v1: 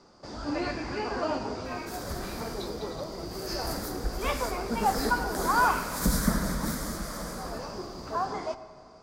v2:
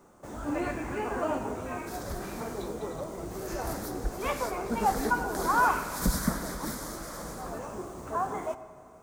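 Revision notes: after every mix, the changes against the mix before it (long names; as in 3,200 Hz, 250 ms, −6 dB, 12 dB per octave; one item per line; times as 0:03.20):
first sound: remove low-pass with resonance 4,800 Hz, resonance Q 13
second sound: send −11.5 dB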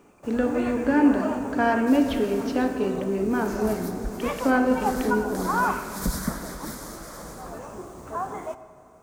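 speech: unmuted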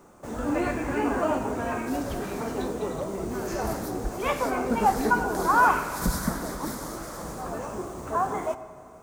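speech −12.0 dB
first sound +4.5 dB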